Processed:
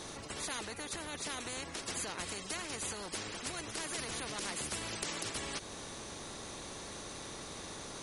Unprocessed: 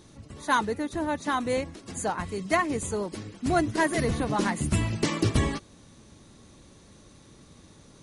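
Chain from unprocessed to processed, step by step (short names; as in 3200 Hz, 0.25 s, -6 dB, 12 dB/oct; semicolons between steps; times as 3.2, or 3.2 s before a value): bell 400 Hz +12 dB 1.1 oct; compressor 2:1, threshold -29 dBFS, peak gain reduction 9.5 dB; limiter -21 dBFS, peak gain reduction 8 dB; spectral compressor 4:1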